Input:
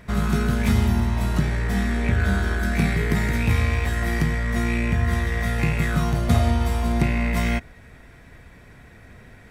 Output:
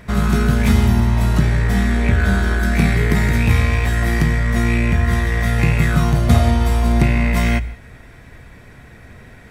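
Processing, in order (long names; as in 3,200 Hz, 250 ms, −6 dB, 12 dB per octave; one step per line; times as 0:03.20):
on a send: low shelf with overshoot 160 Hz +9.5 dB, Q 1.5 + convolution reverb, pre-delay 3 ms, DRR 17.5 dB
on the sum: level +5 dB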